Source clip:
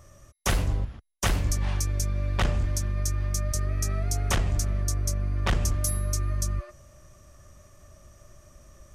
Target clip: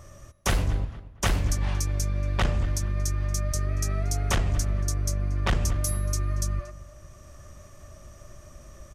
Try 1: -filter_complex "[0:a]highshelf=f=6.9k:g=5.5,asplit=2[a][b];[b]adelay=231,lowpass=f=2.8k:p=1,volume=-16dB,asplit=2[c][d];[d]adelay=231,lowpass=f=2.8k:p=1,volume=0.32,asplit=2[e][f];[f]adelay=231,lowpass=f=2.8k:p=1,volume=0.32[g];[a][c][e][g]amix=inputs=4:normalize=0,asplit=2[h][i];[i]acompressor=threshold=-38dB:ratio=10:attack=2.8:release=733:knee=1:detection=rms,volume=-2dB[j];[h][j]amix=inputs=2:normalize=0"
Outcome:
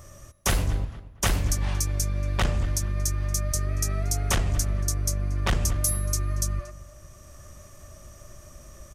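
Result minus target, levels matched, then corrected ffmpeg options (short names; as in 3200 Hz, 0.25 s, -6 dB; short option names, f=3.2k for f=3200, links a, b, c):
8000 Hz band +3.5 dB
-filter_complex "[0:a]highshelf=f=6.9k:g=-3.5,asplit=2[a][b];[b]adelay=231,lowpass=f=2.8k:p=1,volume=-16dB,asplit=2[c][d];[d]adelay=231,lowpass=f=2.8k:p=1,volume=0.32,asplit=2[e][f];[f]adelay=231,lowpass=f=2.8k:p=1,volume=0.32[g];[a][c][e][g]amix=inputs=4:normalize=0,asplit=2[h][i];[i]acompressor=threshold=-38dB:ratio=10:attack=2.8:release=733:knee=1:detection=rms,volume=-2dB[j];[h][j]amix=inputs=2:normalize=0"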